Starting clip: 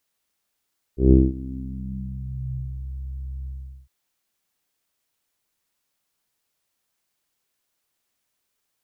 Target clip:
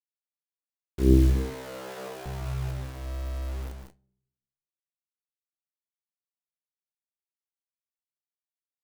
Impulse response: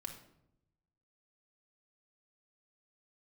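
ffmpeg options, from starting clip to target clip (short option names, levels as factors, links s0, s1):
-filter_complex "[0:a]acrusher=bits=5:mix=0:aa=0.000001,asettb=1/sr,asplit=3[s0][s1][s2];[s0]atrim=end=1.354[s3];[s1]atrim=start=1.35:end=2.26,asetpts=PTS-STARTPTS,afade=t=in:d=0.004:c=qsin,afade=t=out:st=0.906:d=0.004:c=qsin,highpass=f=440:t=q:w=3.7[s4];[s2]atrim=start=2.256[s5];[s3][s4]acrossfade=d=0.004:c1=hsin:c2=qsin[s6];[s6][s5]acrossfade=d=0.004:c1=qsin:c2=hsin,aecho=1:1:154.5|186.6:0.398|0.355,asplit=2[s7][s8];[1:a]atrim=start_sample=2205,asetrate=52920,aresample=44100[s9];[s8][s9]afir=irnorm=-1:irlink=0,volume=0.2[s10];[s7][s10]amix=inputs=2:normalize=0,flanger=delay=4.1:depth=8.9:regen=-65:speed=0.41:shape=triangular"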